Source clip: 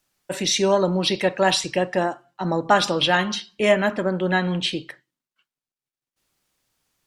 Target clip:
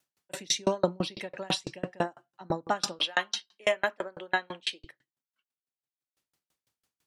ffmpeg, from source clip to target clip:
ffmpeg -i in.wav -af "asetnsamples=nb_out_samples=441:pad=0,asendcmd='2.99 highpass f 480;4.84 highpass f 62',highpass=75,aeval=exprs='val(0)*pow(10,-36*if(lt(mod(6*n/s,1),2*abs(6)/1000),1-mod(6*n/s,1)/(2*abs(6)/1000),(mod(6*n/s,1)-2*abs(6)/1000)/(1-2*abs(6)/1000))/20)':channel_layout=same" out.wav

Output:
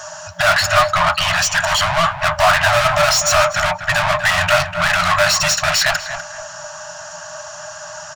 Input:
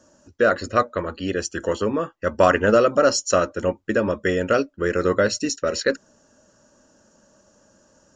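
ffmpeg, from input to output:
ffmpeg -i in.wav -filter_complex "[0:a]asplit=2[link_01][link_02];[link_02]highpass=frequency=720:poles=1,volume=39dB,asoftclip=type=tanh:threshold=-3dB[link_03];[link_01][link_03]amix=inputs=2:normalize=0,lowpass=frequency=4100:poles=1,volume=-6dB,asplit=2[link_04][link_05];[link_05]adelay=245,lowpass=frequency=2100:poles=1,volume=-8dB,asplit=2[link_06][link_07];[link_07]adelay=245,lowpass=frequency=2100:poles=1,volume=0.32,asplit=2[link_08][link_09];[link_09]adelay=245,lowpass=frequency=2100:poles=1,volume=0.32,asplit=2[link_10][link_11];[link_11]adelay=245,lowpass=frequency=2100:poles=1,volume=0.32[link_12];[link_04][link_06][link_08][link_10][link_12]amix=inputs=5:normalize=0,afftfilt=real='re*(1-between(b*sr/4096,180,590))':imag='im*(1-between(b*sr/4096,180,590))':win_size=4096:overlap=0.75,volume=-1.5dB" out.wav

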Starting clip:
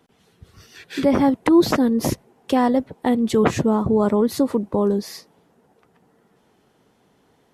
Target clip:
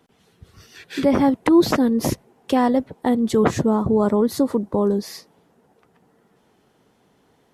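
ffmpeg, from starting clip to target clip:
ffmpeg -i in.wav -filter_complex "[0:a]asettb=1/sr,asplit=3[link_01][link_02][link_03];[link_01]atrim=end=3.014[link_04];[link_02]atrim=start=3.01:end=5.03,asetpts=PTS-STARTPTS,afade=type=in:duration=0.004:curve=qsin,afade=type=out:start_time=2.016:duration=0.004:curve=qsin,equalizer=frequency=2600:width=2.6:gain=-6.5[link_05];[link_03]atrim=start=5.026[link_06];[link_04][link_05]acrossfade=duration=0.004:curve1=hsin:curve2=qsin[link_07];[link_07][link_06]acrossfade=duration=0.004:curve1=qsin:curve2=hsin" out.wav

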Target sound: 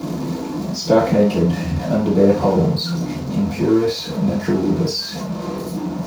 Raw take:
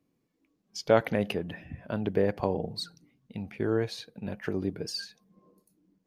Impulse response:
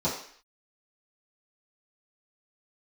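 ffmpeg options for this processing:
-filter_complex "[0:a]aeval=exprs='val(0)+0.5*0.0316*sgn(val(0))':channel_layout=same,bandreject=frequency=95.54:width_type=h:width=4,bandreject=frequency=191.08:width_type=h:width=4,bandreject=frequency=286.62:width_type=h:width=4,bandreject=frequency=382.16:width_type=h:width=4,bandreject=frequency=477.7:width_type=h:width=4,bandreject=frequency=573.24:width_type=h:width=4,bandreject=frequency=668.78:width_type=h:width=4,bandreject=frequency=764.32:width_type=h:width=4,bandreject=frequency=859.86:width_type=h:width=4,bandreject=frequency=955.4:width_type=h:width=4,bandreject=frequency=1050.94:width_type=h:width=4,bandreject=frequency=1146.48:width_type=h:width=4,bandreject=frequency=1242.02:width_type=h:width=4,bandreject=frequency=1337.56:width_type=h:width=4,bandreject=frequency=1433.1:width_type=h:width=4,bandreject=frequency=1528.64:width_type=h:width=4,bandreject=frequency=1624.18:width_type=h:width=4,bandreject=frequency=1719.72:width_type=h:width=4,bandreject=frequency=1815.26:width_type=h:width=4,bandreject=frequency=1910.8:width_type=h:width=4,bandreject=frequency=2006.34:width_type=h:width=4,bandreject=frequency=2101.88:width_type=h:width=4,bandreject=frequency=2197.42:width_type=h:width=4,bandreject=frequency=2292.96:width_type=h:width=4,bandreject=frequency=2388.5:width_type=h:width=4,bandreject=frequency=2484.04:width_type=h:width=4,bandreject=frequency=2579.58:width_type=h:width=4,bandreject=frequency=2675.12:width_type=h:width=4,bandreject=frequency=2770.66:width_type=h:width=4,bandreject=frequency=2866.2:width_type=h:width=4,bandreject=frequency=2961.74:width_type=h:width=4,bandreject=frequency=3057.28:width_type=h:width=4,bandreject=frequency=3152.82:width_type=h:width=4,bandreject=frequency=3248.36:width_type=h:width=4,bandreject=frequency=3343.9:width_type=h:width=4[link_01];[1:a]atrim=start_sample=2205,atrim=end_sample=3528[link_02];[link_01][link_02]afir=irnorm=-1:irlink=0,volume=-3dB"

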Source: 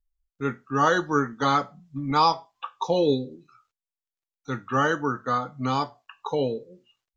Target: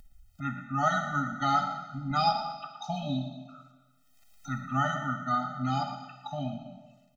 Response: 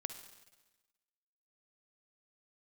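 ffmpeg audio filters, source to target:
-filter_complex "[0:a]acompressor=mode=upward:threshold=-32dB:ratio=2.5,asplit=5[link_01][link_02][link_03][link_04][link_05];[link_02]adelay=116,afreqshift=46,volume=-12.5dB[link_06];[link_03]adelay=232,afreqshift=92,volume=-21.6dB[link_07];[link_04]adelay=348,afreqshift=138,volume=-30.7dB[link_08];[link_05]adelay=464,afreqshift=184,volume=-39.9dB[link_09];[link_01][link_06][link_07][link_08][link_09]amix=inputs=5:normalize=0[link_10];[1:a]atrim=start_sample=2205[link_11];[link_10][link_11]afir=irnorm=-1:irlink=0,afftfilt=real='re*eq(mod(floor(b*sr/1024/300),2),0)':imag='im*eq(mod(floor(b*sr/1024/300),2),0)':win_size=1024:overlap=0.75"

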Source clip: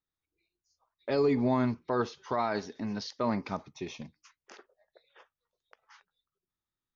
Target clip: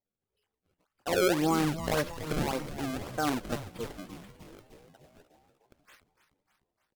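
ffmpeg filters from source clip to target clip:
ffmpeg -i in.wav -filter_complex "[0:a]acrusher=samples=34:mix=1:aa=0.000001:lfo=1:lforange=54.4:lforate=1.8,asplit=8[link_01][link_02][link_03][link_04][link_05][link_06][link_07][link_08];[link_02]adelay=301,afreqshift=-120,volume=-11.5dB[link_09];[link_03]adelay=602,afreqshift=-240,volume=-15.9dB[link_10];[link_04]adelay=903,afreqshift=-360,volume=-20.4dB[link_11];[link_05]adelay=1204,afreqshift=-480,volume=-24.8dB[link_12];[link_06]adelay=1505,afreqshift=-600,volume=-29.2dB[link_13];[link_07]adelay=1806,afreqshift=-720,volume=-33.7dB[link_14];[link_08]adelay=2107,afreqshift=-840,volume=-38.1dB[link_15];[link_01][link_09][link_10][link_11][link_12][link_13][link_14][link_15]amix=inputs=8:normalize=0,asetrate=55563,aresample=44100,atempo=0.793701" out.wav

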